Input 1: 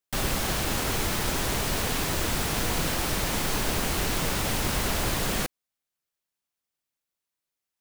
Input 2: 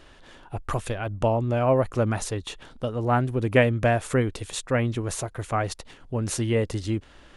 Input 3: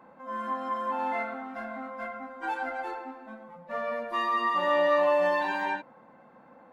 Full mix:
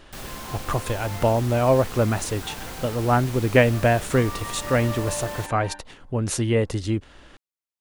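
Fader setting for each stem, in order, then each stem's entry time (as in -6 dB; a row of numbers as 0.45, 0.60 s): -9.5, +2.5, -9.5 dB; 0.00, 0.00, 0.00 s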